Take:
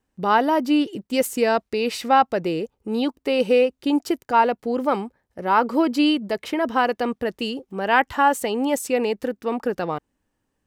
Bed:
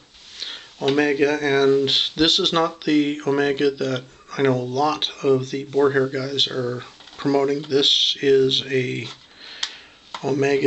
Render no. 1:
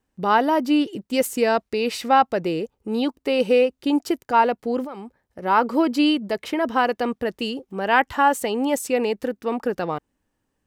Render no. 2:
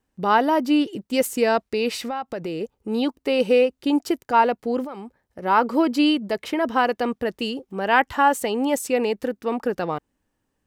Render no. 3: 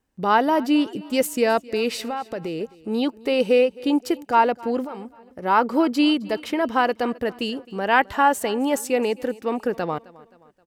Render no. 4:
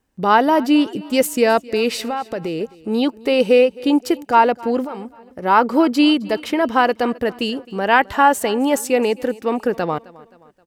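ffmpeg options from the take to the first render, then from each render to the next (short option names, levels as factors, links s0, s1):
-filter_complex "[0:a]asettb=1/sr,asplit=3[s0][s1][s2];[s0]atrim=end=4.844[s3];[s1]atrim=start=4.84:end=5.43,asetpts=PTS-STARTPTS,afade=t=in:d=0.004:c=qsin,afade=t=out:st=0.586:d=0.004:c=qsin,acompressor=threshold=0.0282:ratio=6:attack=3.2:release=140:knee=1:detection=peak[s4];[s2]atrim=start=5.426[s5];[s3][s4]acrossfade=d=0.004:c1=hsin:c2=qsin[s6];[s6][s5]acrossfade=d=0.004:c1=qsin:c2=hsin"
-filter_complex "[0:a]asettb=1/sr,asplit=3[s0][s1][s2];[s0]atrim=end=1.974[s3];[s1]atrim=start=1.97:end=2.61,asetpts=PTS-STARTPTS,afade=t=in:d=0.004:c=qsin,afade=t=out:st=0.636:d=0.004:c=qsin,acompressor=threshold=0.0562:ratio=6:attack=3.2:release=140:knee=1:detection=peak[s4];[s2]atrim=start=2.606[s5];[s3][s4]acrossfade=d=0.004:c1=hsin:c2=qsin[s6];[s6][s5]acrossfade=d=0.004:c1=qsin:c2=hsin"
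-af "aecho=1:1:263|526|789:0.0841|0.0387|0.0178"
-af "volume=1.68,alimiter=limit=0.794:level=0:latency=1"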